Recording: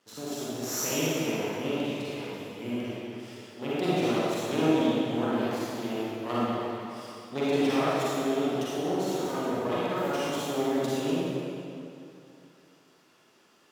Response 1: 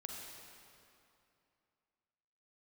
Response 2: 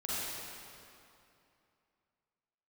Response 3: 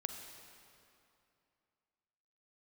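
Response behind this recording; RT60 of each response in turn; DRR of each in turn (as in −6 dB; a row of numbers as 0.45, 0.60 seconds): 2; 2.7, 2.7, 2.7 seconds; −0.5, −9.5, 5.0 decibels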